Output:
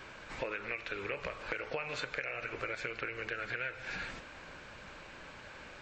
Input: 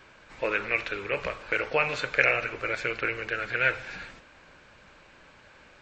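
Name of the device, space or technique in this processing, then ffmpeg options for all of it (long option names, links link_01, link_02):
serial compression, leveller first: -af "acompressor=threshold=-28dB:ratio=2,acompressor=threshold=-40dB:ratio=5,volume=4dB"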